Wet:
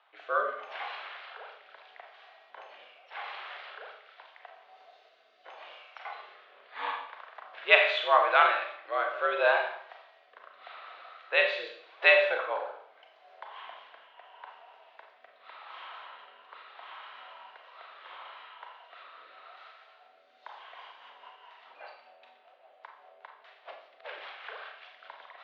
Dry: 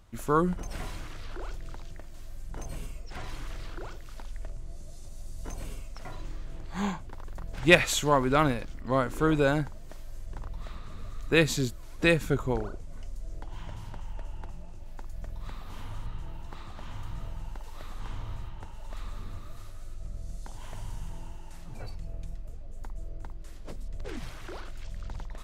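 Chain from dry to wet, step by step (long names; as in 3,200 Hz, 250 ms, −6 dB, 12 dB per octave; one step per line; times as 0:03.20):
single-sideband voice off tune +80 Hz 570–3,500 Hz
rotating-speaker cabinet horn 0.8 Hz, later 5 Hz, at 0:20.12
four-comb reverb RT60 0.65 s, combs from 29 ms, DRR 2.5 dB
level +5.5 dB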